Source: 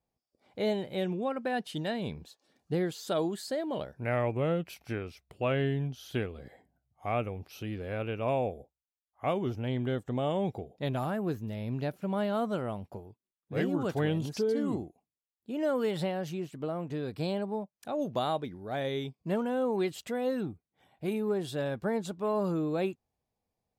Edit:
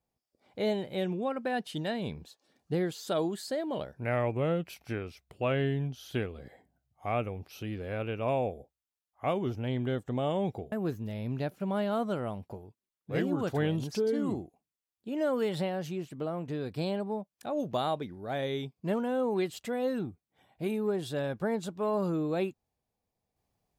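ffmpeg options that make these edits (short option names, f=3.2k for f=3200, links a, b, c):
-filter_complex "[0:a]asplit=2[a][b];[a]atrim=end=10.722[c];[b]atrim=start=11.138[d];[c][d]acrossfade=d=0.004:c1=hsin:c2=hsin"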